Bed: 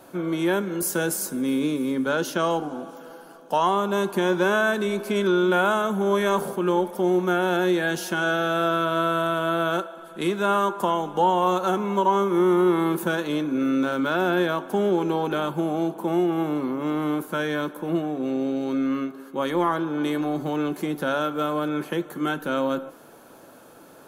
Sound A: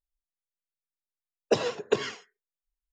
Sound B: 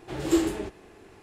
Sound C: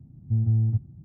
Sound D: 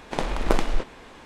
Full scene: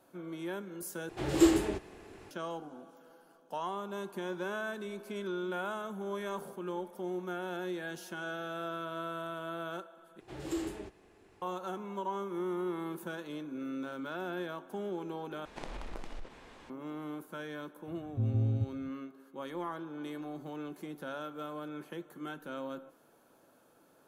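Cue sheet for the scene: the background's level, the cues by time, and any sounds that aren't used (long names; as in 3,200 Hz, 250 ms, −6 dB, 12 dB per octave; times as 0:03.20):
bed −16 dB
0:01.09: overwrite with B −0.5 dB
0:10.20: overwrite with B −10.5 dB + brickwall limiter −15 dBFS
0:15.45: overwrite with D −8 dB + downward compressor 8 to 1, threshold −29 dBFS
0:17.87: mix in C + low-shelf EQ 450 Hz −8.5 dB
not used: A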